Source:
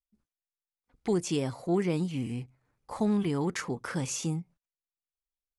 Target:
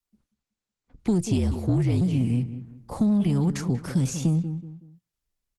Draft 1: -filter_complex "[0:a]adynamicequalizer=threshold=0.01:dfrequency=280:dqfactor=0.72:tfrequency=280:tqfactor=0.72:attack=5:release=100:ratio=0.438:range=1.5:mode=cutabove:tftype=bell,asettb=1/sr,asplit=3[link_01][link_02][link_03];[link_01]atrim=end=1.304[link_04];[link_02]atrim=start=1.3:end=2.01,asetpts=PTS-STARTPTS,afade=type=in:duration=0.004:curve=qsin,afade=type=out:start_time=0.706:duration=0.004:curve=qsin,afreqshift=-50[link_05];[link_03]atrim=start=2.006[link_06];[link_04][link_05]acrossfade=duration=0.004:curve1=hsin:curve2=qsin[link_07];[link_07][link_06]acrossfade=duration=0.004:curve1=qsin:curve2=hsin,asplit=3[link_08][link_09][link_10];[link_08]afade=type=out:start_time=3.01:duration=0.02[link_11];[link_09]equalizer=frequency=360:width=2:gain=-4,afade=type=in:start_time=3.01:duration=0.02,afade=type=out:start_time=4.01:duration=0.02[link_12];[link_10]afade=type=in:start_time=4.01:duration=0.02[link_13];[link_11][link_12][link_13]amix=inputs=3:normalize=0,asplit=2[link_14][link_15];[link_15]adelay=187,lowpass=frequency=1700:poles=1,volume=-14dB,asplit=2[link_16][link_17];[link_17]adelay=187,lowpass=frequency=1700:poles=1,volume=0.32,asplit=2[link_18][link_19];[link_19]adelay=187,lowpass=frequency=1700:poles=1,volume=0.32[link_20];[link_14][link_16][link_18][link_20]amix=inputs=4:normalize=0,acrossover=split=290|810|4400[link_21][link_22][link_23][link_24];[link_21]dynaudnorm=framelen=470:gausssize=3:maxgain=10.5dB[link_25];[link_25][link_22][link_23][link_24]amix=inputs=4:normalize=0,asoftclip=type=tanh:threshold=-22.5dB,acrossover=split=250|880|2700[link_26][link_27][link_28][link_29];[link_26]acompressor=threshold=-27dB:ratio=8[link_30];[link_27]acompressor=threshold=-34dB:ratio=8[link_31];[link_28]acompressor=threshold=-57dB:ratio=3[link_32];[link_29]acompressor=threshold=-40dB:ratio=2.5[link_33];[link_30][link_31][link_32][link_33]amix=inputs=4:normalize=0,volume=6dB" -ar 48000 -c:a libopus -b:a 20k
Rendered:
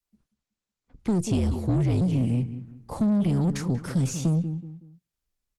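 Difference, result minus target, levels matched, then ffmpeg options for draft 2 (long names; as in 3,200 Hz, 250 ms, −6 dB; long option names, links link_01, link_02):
soft clipping: distortion +7 dB
-filter_complex "[0:a]adynamicequalizer=threshold=0.01:dfrequency=280:dqfactor=0.72:tfrequency=280:tqfactor=0.72:attack=5:release=100:ratio=0.438:range=1.5:mode=cutabove:tftype=bell,asettb=1/sr,asplit=3[link_01][link_02][link_03];[link_01]atrim=end=1.304[link_04];[link_02]atrim=start=1.3:end=2.01,asetpts=PTS-STARTPTS,afade=type=in:duration=0.004:curve=qsin,afade=type=out:start_time=0.706:duration=0.004:curve=qsin,afreqshift=-50[link_05];[link_03]atrim=start=2.006[link_06];[link_04][link_05]acrossfade=duration=0.004:curve1=hsin:curve2=qsin[link_07];[link_07][link_06]acrossfade=duration=0.004:curve1=qsin:curve2=hsin,asplit=3[link_08][link_09][link_10];[link_08]afade=type=out:start_time=3.01:duration=0.02[link_11];[link_09]equalizer=frequency=360:width=2:gain=-4,afade=type=in:start_time=3.01:duration=0.02,afade=type=out:start_time=4.01:duration=0.02[link_12];[link_10]afade=type=in:start_time=4.01:duration=0.02[link_13];[link_11][link_12][link_13]amix=inputs=3:normalize=0,asplit=2[link_14][link_15];[link_15]adelay=187,lowpass=frequency=1700:poles=1,volume=-14dB,asplit=2[link_16][link_17];[link_17]adelay=187,lowpass=frequency=1700:poles=1,volume=0.32,asplit=2[link_18][link_19];[link_19]adelay=187,lowpass=frequency=1700:poles=1,volume=0.32[link_20];[link_14][link_16][link_18][link_20]amix=inputs=4:normalize=0,acrossover=split=290|810|4400[link_21][link_22][link_23][link_24];[link_21]dynaudnorm=framelen=470:gausssize=3:maxgain=10.5dB[link_25];[link_25][link_22][link_23][link_24]amix=inputs=4:normalize=0,asoftclip=type=tanh:threshold=-16.5dB,acrossover=split=250|880|2700[link_26][link_27][link_28][link_29];[link_26]acompressor=threshold=-27dB:ratio=8[link_30];[link_27]acompressor=threshold=-34dB:ratio=8[link_31];[link_28]acompressor=threshold=-57dB:ratio=3[link_32];[link_29]acompressor=threshold=-40dB:ratio=2.5[link_33];[link_30][link_31][link_32][link_33]amix=inputs=4:normalize=0,volume=6dB" -ar 48000 -c:a libopus -b:a 20k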